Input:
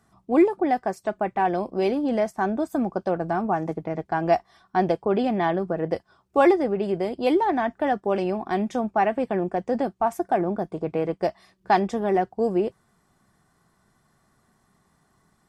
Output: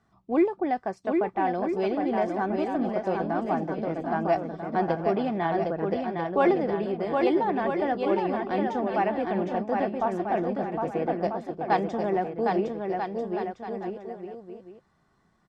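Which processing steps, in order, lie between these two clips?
LPF 4800 Hz 12 dB/oct; on a send: bouncing-ball echo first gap 0.76 s, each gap 0.7×, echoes 5; on the sum: gain -4.5 dB

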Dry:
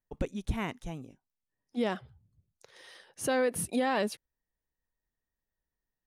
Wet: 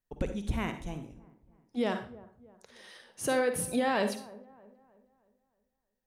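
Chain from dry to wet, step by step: dark delay 0.313 s, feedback 42%, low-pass 1100 Hz, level -19.5 dB; on a send at -7.5 dB: reverb RT60 0.40 s, pre-delay 44 ms

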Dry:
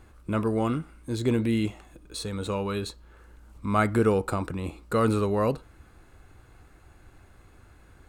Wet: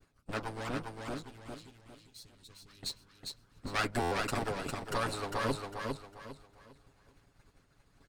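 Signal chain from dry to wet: minimum comb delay 7.2 ms; expander -49 dBFS; bell 4900 Hz +8 dB 0.91 oct; harmonic-percussive split harmonic -16 dB; 1.14–2.83 passive tone stack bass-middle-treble 6-0-2; feedback echo 0.403 s, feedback 31%, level -4 dB; stuck buffer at 4.01, samples 512, times 8; gain -2 dB

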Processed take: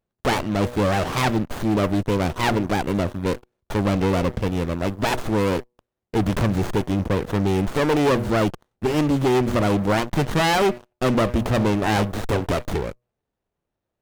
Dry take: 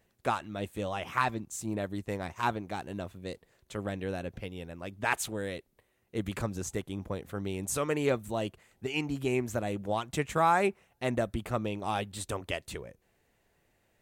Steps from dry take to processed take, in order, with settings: de-hum 121.5 Hz, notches 5; sample leveller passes 5; running maximum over 17 samples

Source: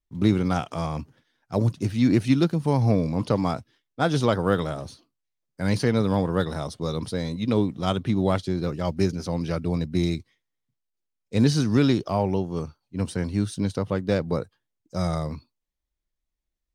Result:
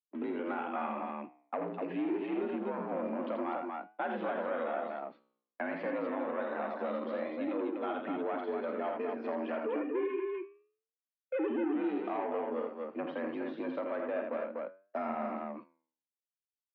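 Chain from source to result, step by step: 9.66–11.74 sine-wave speech; limiter -18 dBFS, peak gain reduction 10.5 dB; spectral noise reduction 7 dB; expander -38 dBFS; sample leveller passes 2; flange 0.27 Hz, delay 9.4 ms, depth 8.5 ms, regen -81%; on a send: loudspeakers at several distances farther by 16 m -10 dB, 28 m -5 dB, 84 m -5 dB; on the sum: mistuned SSB +62 Hz 190–2600 Hz; three-band squash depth 70%; gain -5.5 dB

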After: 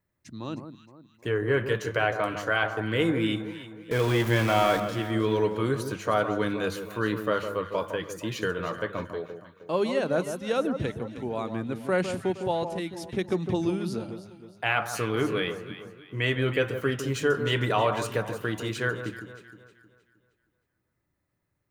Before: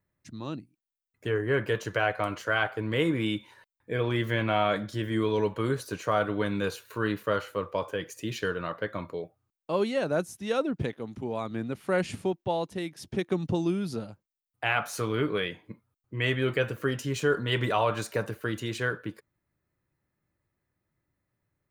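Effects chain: 3.91–4.8 zero-crossing step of -30 dBFS; notches 50/100/150/200 Hz; on a send: echo with dull and thin repeats by turns 0.156 s, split 1400 Hz, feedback 61%, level -8 dB; on the sum: gain +1 dB

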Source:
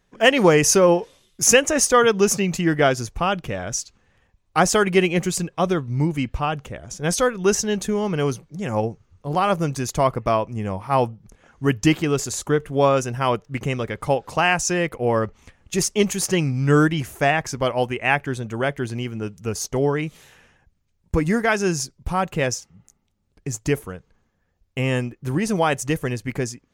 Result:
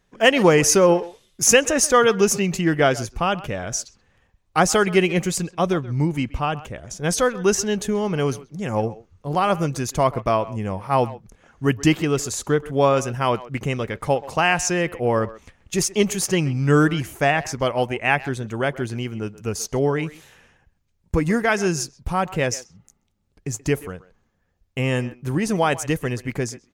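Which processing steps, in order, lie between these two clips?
speakerphone echo 0.13 s, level -17 dB

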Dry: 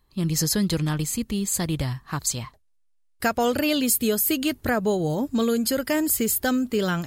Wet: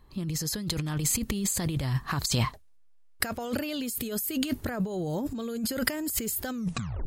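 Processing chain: tape stop at the end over 0.53 s; negative-ratio compressor -32 dBFS, ratio -1; mismatched tape noise reduction decoder only; gain +1.5 dB

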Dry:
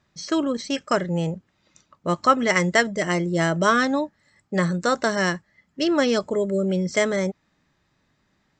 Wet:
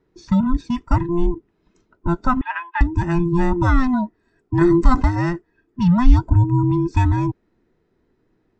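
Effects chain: band inversion scrambler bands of 500 Hz; tilt -4 dB/oct; 2.41–2.81 elliptic band-pass 870–3100 Hz, stop band 70 dB; 4.61–5.02 fast leveller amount 50%; gain -3 dB

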